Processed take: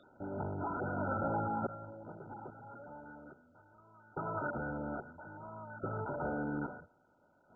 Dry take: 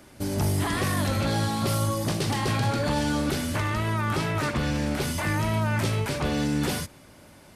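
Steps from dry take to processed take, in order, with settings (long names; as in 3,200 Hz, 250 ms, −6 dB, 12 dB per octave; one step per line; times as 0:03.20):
spectral tilt +3.5 dB per octave
mains-hum notches 60/120 Hz
tuned comb filter 120 Hz, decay 0.74 s, harmonics all, mix 40%
sample-and-hold tremolo 1.2 Hz, depth 95%
delay with a high-pass on its return 96 ms, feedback 65%, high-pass 3,400 Hz, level −12.5 dB
level +1 dB
MP2 8 kbit/s 16,000 Hz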